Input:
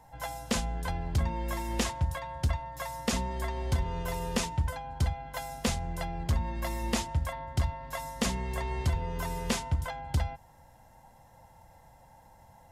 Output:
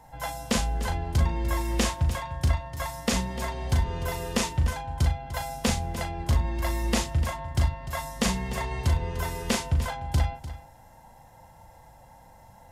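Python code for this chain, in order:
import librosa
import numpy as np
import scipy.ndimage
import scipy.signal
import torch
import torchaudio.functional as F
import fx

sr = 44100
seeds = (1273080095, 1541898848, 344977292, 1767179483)

p1 = fx.doubler(x, sr, ms=38.0, db=-6.0)
p2 = p1 + fx.echo_single(p1, sr, ms=298, db=-14.0, dry=0)
y = p2 * librosa.db_to_amplitude(3.5)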